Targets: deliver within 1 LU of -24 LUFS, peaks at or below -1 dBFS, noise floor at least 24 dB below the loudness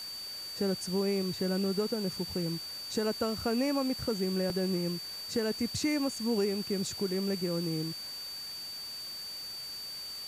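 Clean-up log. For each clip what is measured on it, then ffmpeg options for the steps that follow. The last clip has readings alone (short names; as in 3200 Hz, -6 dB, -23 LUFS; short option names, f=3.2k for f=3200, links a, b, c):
steady tone 4600 Hz; tone level -39 dBFS; noise floor -41 dBFS; noise floor target -57 dBFS; loudness -32.5 LUFS; peak -20.0 dBFS; loudness target -24.0 LUFS
-> -af "bandreject=f=4.6k:w=30"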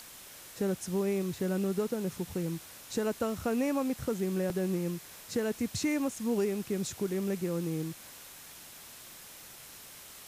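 steady tone none; noise floor -50 dBFS; noise floor target -57 dBFS
-> -af "afftdn=nr=7:nf=-50"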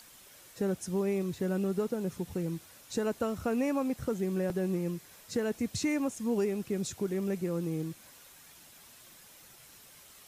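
noise floor -55 dBFS; noise floor target -57 dBFS
-> -af "afftdn=nr=6:nf=-55"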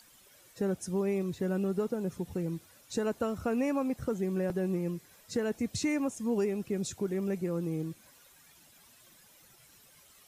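noise floor -60 dBFS; loudness -33.0 LUFS; peak -21.0 dBFS; loudness target -24.0 LUFS
-> -af "volume=9dB"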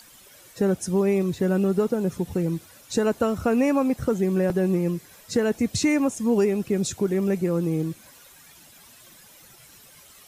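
loudness -24.0 LUFS; peak -12.0 dBFS; noise floor -51 dBFS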